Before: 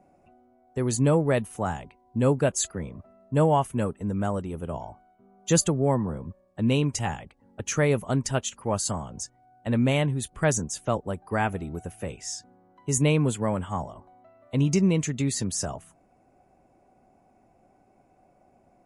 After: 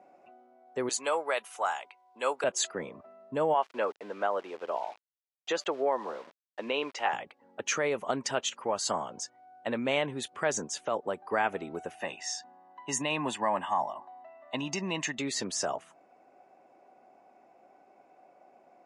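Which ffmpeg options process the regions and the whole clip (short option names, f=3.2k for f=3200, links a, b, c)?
-filter_complex "[0:a]asettb=1/sr,asplit=3[a][b][c];[a]atrim=end=0.894[d];[b]atrim=start=0.89:end=2.44,asetpts=PTS-STARTPTS,afade=t=in:d=0.004:c=qsin,afade=t=out:st=1.546:d=0.004:c=qsin,highpass=840,highshelf=f=8.2k:g=10,bandreject=f=1.8k:w=13[e];[c]atrim=start=2.436[f];[d][e]acrossfade=d=0.004:c1=hsin:c2=qsin[g];[g][f]acrossfade=d=0.004:c1=qsin:c2=hsin,asettb=1/sr,asplit=3[h][i][j];[h]atrim=end=3.544[k];[i]atrim=start=3.54:end=7.13,asetpts=PTS-STARTPTS,afade=t=in:d=0.004:c=qsin,afade=t=out:st=3.586:d=0.004:c=qsin,highpass=450,lowpass=3.4k,aeval=exprs='val(0)*gte(abs(val(0)),0.00316)':c=same[l];[j]atrim=start=7.126[m];[k][l]acrossfade=d=0.004:c1=hsin:c2=qsin[n];[n][m]acrossfade=d=0.004:c1=qsin:c2=hsin,asettb=1/sr,asplit=3[o][p][q];[o]atrim=end=11.954[r];[p]atrim=start=11.95:end=15.18,asetpts=PTS-STARTPTS,afade=t=in:d=0.004:c=qsin,afade=t=out:st=3.226:d=0.004:c=qsin,highpass=110,bass=f=250:g=-6,treble=f=4k:g=-2,aecho=1:1:1.1:0.75,atrim=end_sample=142443[s];[q]atrim=start=15.176[t];[r][s]acrossfade=d=0.004:c1=hsin:c2=qsin[u];[u][t]acrossfade=d=0.004:c1=qsin:c2=hsin,lowpass=4.7k,alimiter=limit=-20.5dB:level=0:latency=1:release=93,highpass=430,volume=4.5dB"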